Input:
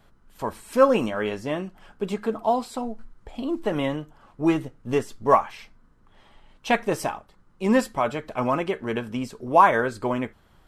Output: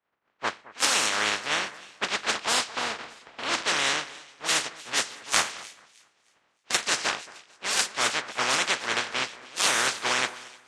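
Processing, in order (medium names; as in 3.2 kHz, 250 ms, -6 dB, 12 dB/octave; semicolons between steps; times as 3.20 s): spectral contrast reduction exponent 0.16; dynamic bell 1.6 kHz, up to +3 dB, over -37 dBFS, Q 0.85; level-controlled noise filter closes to 2 kHz, open at -16 dBFS; Chebyshev shaper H 7 -12 dB, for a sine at 2 dBFS; high-pass 440 Hz 6 dB/octave; reverse; compression 8:1, threshold -28 dBFS, peak gain reduction 17.5 dB; reverse; low-pass 8.4 kHz 24 dB/octave; on a send: two-band feedback delay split 2.1 kHz, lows 223 ms, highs 307 ms, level -14 dB; on the sum: three bands expanded up and down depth 70%; trim +7.5 dB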